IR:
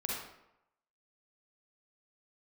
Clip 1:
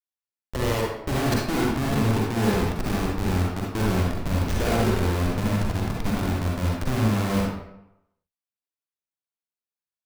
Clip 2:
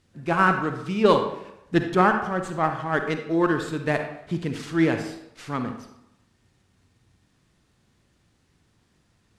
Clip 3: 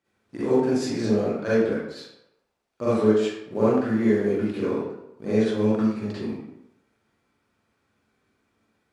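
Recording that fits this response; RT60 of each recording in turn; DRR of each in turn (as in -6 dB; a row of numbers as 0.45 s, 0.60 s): 1; 0.85 s, 0.85 s, 0.85 s; -3.5 dB, 6.0 dB, -11.0 dB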